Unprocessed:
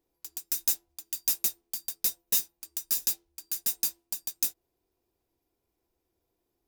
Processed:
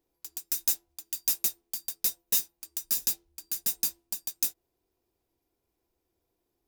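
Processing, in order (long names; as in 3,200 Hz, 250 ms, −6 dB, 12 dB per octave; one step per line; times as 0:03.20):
0:02.83–0:04.19: low-shelf EQ 210 Hz +6.5 dB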